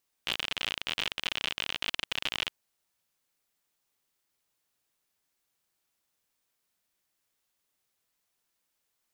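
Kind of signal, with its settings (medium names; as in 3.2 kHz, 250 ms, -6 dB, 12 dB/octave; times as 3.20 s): random clicks 56 per s -14 dBFS 2.23 s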